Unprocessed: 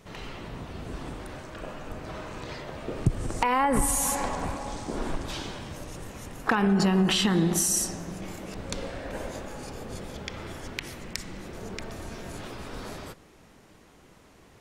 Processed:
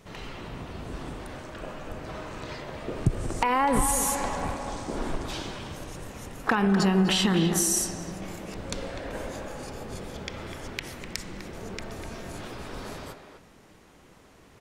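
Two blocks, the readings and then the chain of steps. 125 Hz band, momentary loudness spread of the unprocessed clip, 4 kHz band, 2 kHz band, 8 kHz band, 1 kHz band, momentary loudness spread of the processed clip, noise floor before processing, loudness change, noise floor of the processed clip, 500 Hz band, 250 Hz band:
0.0 dB, 17 LU, +0.5 dB, +0.5 dB, 0.0 dB, +0.5 dB, 17 LU, -55 dBFS, 0.0 dB, -54 dBFS, +0.5 dB, +0.5 dB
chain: speakerphone echo 0.25 s, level -7 dB

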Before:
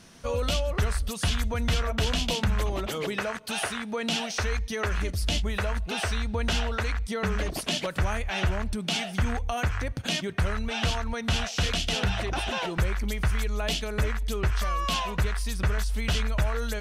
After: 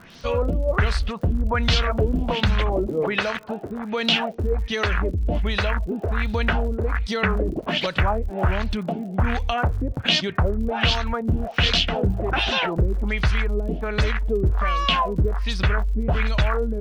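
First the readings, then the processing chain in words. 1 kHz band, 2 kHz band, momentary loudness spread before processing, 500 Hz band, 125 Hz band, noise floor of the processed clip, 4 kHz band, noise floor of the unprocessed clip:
+6.5 dB, +5.5 dB, 3 LU, +7.0 dB, +5.0 dB, -35 dBFS, +5.5 dB, -37 dBFS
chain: LFO low-pass sine 1.3 Hz 310–4600 Hz; crackle 75/s -42 dBFS; gain +5 dB

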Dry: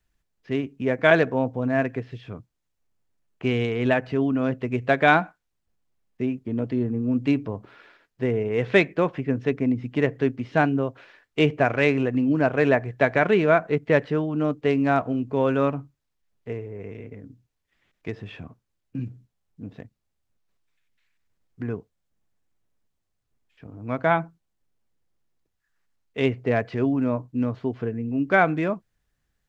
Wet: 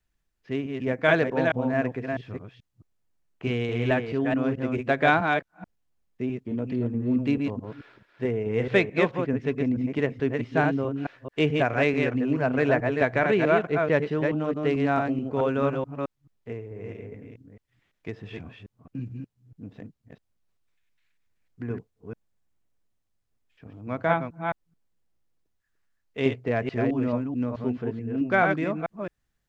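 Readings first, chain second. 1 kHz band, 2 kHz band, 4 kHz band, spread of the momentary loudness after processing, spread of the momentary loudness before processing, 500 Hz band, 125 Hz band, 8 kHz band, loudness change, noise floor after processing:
-2.0 dB, -2.0 dB, -2.0 dB, 17 LU, 18 LU, -2.0 dB, -2.0 dB, n/a, -2.5 dB, -77 dBFS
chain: reverse delay 0.217 s, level -4 dB; gain -3.5 dB

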